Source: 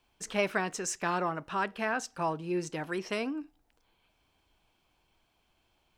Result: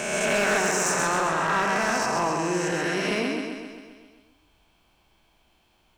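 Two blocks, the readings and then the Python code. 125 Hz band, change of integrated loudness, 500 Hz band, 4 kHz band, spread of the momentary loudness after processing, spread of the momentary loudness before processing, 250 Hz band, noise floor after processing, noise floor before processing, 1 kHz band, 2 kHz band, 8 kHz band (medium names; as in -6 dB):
+7.0 dB, +9.0 dB, +8.0 dB, +11.0 dB, 8 LU, 5 LU, +7.0 dB, -65 dBFS, -74 dBFS, +9.0 dB, +10.5 dB, +11.5 dB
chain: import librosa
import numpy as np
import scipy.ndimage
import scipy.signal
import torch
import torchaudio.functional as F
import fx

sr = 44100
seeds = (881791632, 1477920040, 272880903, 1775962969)

y = fx.spec_swells(x, sr, rise_s=2.11)
y = fx.echo_feedback(y, sr, ms=132, feedback_pct=59, wet_db=-4)
y = np.clip(10.0 ** (20.0 / 20.0) * y, -1.0, 1.0) / 10.0 ** (20.0 / 20.0)
y = y * librosa.db_to_amplitude(2.5)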